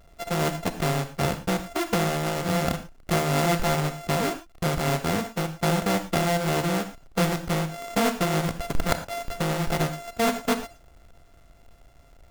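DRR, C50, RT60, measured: 9.5 dB, 11.0 dB, no single decay rate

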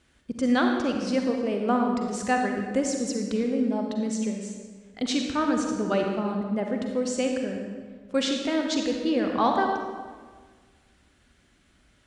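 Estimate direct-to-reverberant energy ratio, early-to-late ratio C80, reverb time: 2.0 dB, 4.5 dB, 1.6 s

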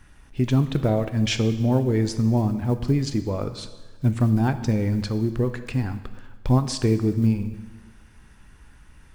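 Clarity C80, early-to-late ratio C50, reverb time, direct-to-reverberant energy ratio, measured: 13.5 dB, 12.0 dB, 1.3 s, 9.5 dB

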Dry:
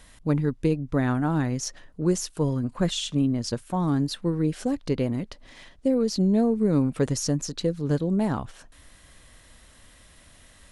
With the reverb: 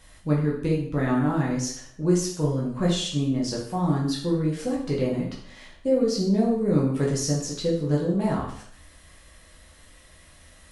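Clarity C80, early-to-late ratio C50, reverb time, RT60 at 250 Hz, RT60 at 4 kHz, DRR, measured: 8.0 dB, 4.5 dB, 0.55 s, 0.60 s, 0.55 s, -4.5 dB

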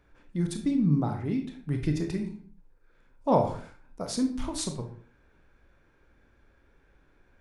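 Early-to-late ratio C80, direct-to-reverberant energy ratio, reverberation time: 12.5 dB, 4.5 dB, 0.50 s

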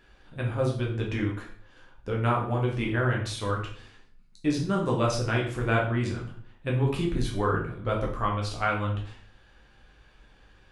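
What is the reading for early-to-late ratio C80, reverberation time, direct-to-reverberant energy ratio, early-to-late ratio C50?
10.5 dB, 0.50 s, -2.5 dB, 6.0 dB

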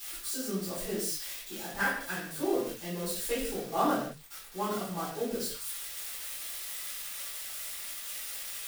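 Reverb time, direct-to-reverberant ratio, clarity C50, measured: no single decay rate, -12.0 dB, 2.0 dB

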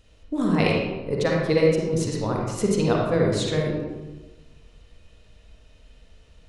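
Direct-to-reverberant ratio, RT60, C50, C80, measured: -2.0 dB, 1.2 s, -0.5 dB, 2.5 dB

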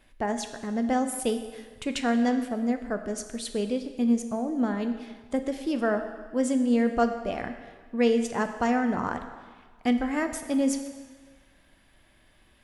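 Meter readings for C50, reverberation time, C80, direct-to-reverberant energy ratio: 9.0 dB, 1.6 s, 10.5 dB, 7.0 dB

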